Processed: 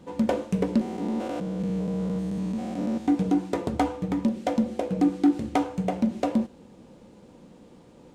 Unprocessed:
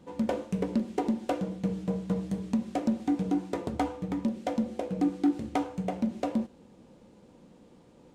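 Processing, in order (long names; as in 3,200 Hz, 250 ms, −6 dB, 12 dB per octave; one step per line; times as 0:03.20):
0:00.81–0:03.08: spectrum averaged block by block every 200 ms
level +5 dB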